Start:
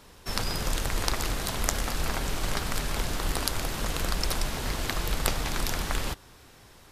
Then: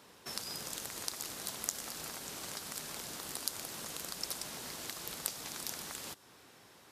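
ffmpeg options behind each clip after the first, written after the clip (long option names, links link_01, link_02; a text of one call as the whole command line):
ffmpeg -i in.wav -filter_complex "[0:a]highpass=170,acrossover=split=4500[link_01][link_02];[link_01]acompressor=threshold=-41dB:ratio=6[link_03];[link_03][link_02]amix=inputs=2:normalize=0,volume=-4.5dB" out.wav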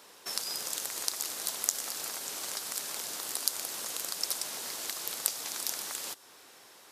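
ffmpeg -i in.wav -af "bass=frequency=250:gain=-14,treble=frequency=4000:gain=4,volume=3.5dB" out.wav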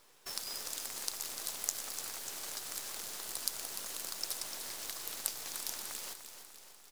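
ffmpeg -i in.wav -af "acrusher=bits=7:dc=4:mix=0:aa=0.000001,aecho=1:1:297|594|891|1188|1485|1782|2079:0.316|0.183|0.106|0.0617|0.0358|0.0208|0.012,volume=-6dB" out.wav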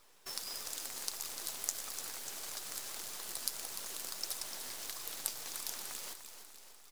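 ffmpeg -i in.wav -af "flanger=delay=0.8:depth=7.3:regen=67:speed=1.6:shape=sinusoidal,volume=3dB" out.wav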